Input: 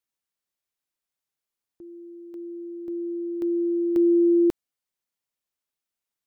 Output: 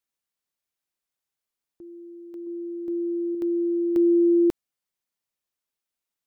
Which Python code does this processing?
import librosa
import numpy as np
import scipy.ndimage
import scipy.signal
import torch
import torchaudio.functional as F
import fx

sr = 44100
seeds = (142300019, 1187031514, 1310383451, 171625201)

y = fx.dynamic_eq(x, sr, hz=310.0, q=2.6, threshold_db=-45.0, ratio=4.0, max_db=4, at=(2.46, 3.35))